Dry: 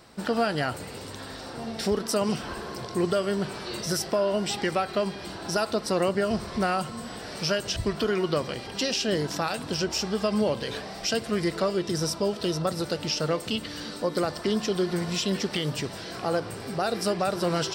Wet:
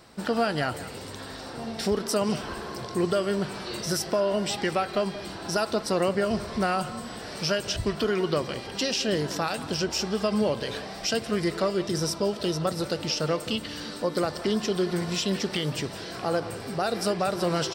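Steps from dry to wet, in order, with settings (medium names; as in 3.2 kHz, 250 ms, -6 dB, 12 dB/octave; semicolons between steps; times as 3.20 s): speakerphone echo 180 ms, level -13 dB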